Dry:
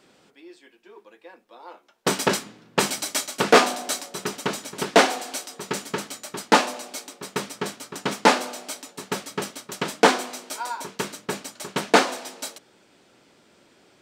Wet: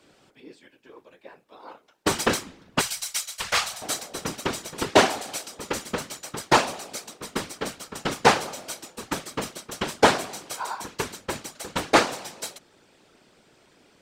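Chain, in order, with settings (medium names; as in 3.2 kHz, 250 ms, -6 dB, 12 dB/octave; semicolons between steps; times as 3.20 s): whisper effect; 2.81–3.82 s: amplifier tone stack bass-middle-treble 10-0-10; trim -1 dB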